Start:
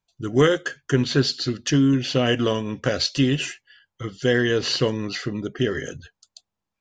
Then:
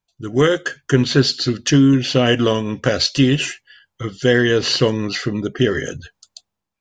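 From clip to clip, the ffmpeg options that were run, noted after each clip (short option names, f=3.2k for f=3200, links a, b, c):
-af "dynaudnorm=f=110:g=9:m=10dB"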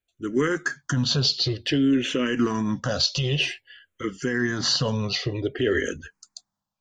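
-filter_complex "[0:a]alimiter=limit=-11dB:level=0:latency=1:release=39,asplit=2[a][b];[b]afreqshift=-0.53[c];[a][c]amix=inputs=2:normalize=1"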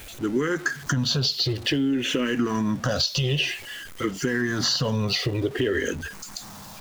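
-af "aeval=exprs='val(0)+0.5*0.0126*sgn(val(0))':c=same,acompressor=threshold=-24dB:ratio=6,volume=3.5dB"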